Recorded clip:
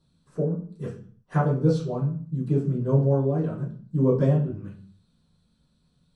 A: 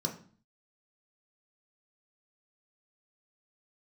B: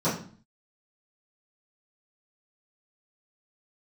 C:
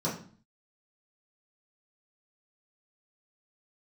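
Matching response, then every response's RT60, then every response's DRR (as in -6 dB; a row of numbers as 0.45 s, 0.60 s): B; 0.45 s, 0.45 s, 0.45 s; 1.5 dB, -14.5 dB, -8.0 dB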